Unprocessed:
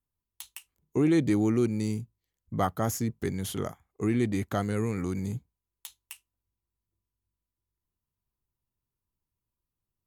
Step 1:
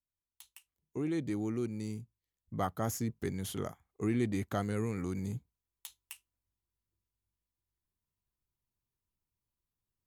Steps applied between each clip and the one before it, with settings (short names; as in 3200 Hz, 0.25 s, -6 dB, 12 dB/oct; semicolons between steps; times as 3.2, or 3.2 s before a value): vocal rider 2 s; gain -7 dB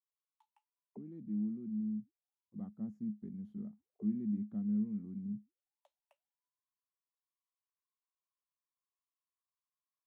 auto-wah 210–1100 Hz, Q 18, down, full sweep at -37.5 dBFS; gain +7.5 dB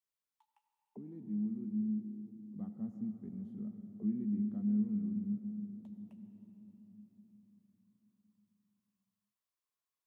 reverb RT60 4.5 s, pre-delay 70 ms, DRR 7 dB